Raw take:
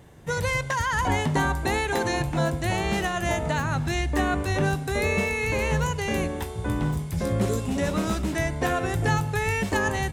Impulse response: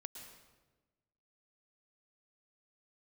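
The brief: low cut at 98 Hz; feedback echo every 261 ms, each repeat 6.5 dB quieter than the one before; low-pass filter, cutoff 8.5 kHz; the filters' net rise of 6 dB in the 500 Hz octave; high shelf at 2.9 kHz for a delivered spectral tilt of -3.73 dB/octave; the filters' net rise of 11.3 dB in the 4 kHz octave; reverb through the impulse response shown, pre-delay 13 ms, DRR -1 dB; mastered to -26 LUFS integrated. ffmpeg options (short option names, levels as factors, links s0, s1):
-filter_complex "[0:a]highpass=98,lowpass=8500,equalizer=f=500:t=o:g=7,highshelf=f=2900:g=8,equalizer=f=4000:t=o:g=8,aecho=1:1:261|522|783|1044|1305|1566:0.473|0.222|0.105|0.0491|0.0231|0.0109,asplit=2[s0][s1];[1:a]atrim=start_sample=2205,adelay=13[s2];[s1][s2]afir=irnorm=-1:irlink=0,volume=1.88[s3];[s0][s3]amix=inputs=2:normalize=0,volume=0.355"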